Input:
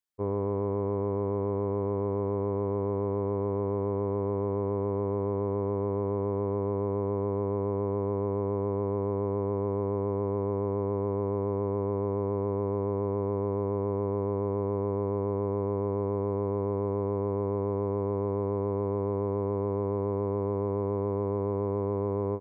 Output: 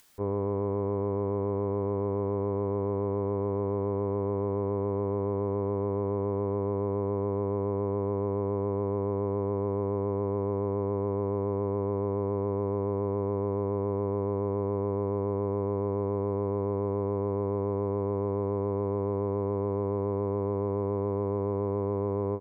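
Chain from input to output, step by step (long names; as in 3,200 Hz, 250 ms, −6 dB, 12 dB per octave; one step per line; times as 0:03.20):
upward compression, threshold −38 dBFS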